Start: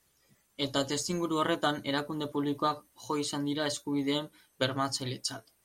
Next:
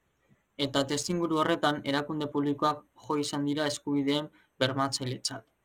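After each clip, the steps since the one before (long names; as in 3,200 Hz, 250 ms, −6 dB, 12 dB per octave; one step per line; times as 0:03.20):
adaptive Wiener filter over 9 samples
level +2.5 dB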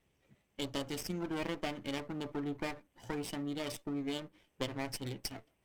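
lower of the sound and its delayed copy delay 0.36 ms
downward compressor 2 to 1, threshold −40 dBFS, peak gain reduction 10.5 dB
level −1 dB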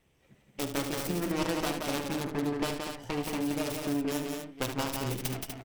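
phase distortion by the signal itself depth 0.64 ms
on a send: multi-tap delay 48/74/174/245/505 ms −15/−9.5/−4.5/−7/−17 dB
on the sum: level +5.5 dB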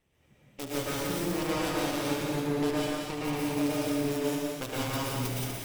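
dense smooth reverb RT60 1.1 s, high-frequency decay 1×, pre-delay 100 ms, DRR −5.5 dB
level −5 dB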